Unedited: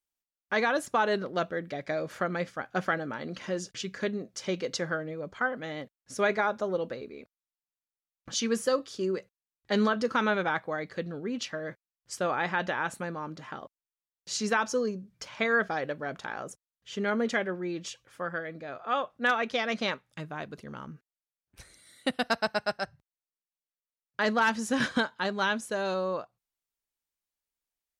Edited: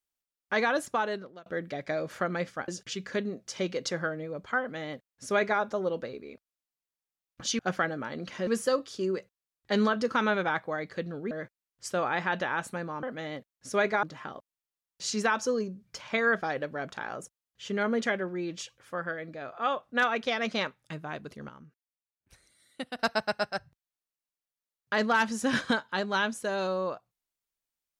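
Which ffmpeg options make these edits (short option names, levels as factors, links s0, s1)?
-filter_complex "[0:a]asplit=10[s0][s1][s2][s3][s4][s5][s6][s7][s8][s9];[s0]atrim=end=1.46,asetpts=PTS-STARTPTS,afade=t=out:st=0.81:d=0.65[s10];[s1]atrim=start=1.46:end=2.682,asetpts=PTS-STARTPTS,afade=t=in:d=0.004:c=hsin[s11];[s2]atrim=start=3.558:end=8.472[s12];[s3]atrim=start=2.678:end=3.562[s13];[s4]atrim=start=8.468:end=11.312[s14];[s5]atrim=start=11.578:end=13.302[s15];[s6]atrim=start=5.478:end=6.482[s16];[s7]atrim=start=13.298:end=20.762[s17];[s8]atrim=start=20.758:end=22.262,asetpts=PTS-STARTPTS,volume=0.376[s18];[s9]atrim=start=22.258[s19];[s10][s11]concat=n=2:v=0:a=1[s20];[s20][s12]acrossfade=d=0.004:c1=hsin:c2=hsin[s21];[s21][s13]acrossfade=d=0.004:c1=hsin:c2=hsin[s22];[s22][s14]acrossfade=d=0.004:c1=hsin:c2=hsin[s23];[s23][s15]acrossfade=d=0.004:c1=hsin:c2=hsin[s24];[s24][s16]acrossfade=d=0.004:c1=hsin:c2=hsin[s25];[s25][s17]acrossfade=d=0.004:c1=hsin:c2=hsin[s26];[s26][s18]acrossfade=d=0.004:c1=hsin:c2=hsin[s27];[s27][s19]acrossfade=d=0.004:c1=hsin:c2=hsin"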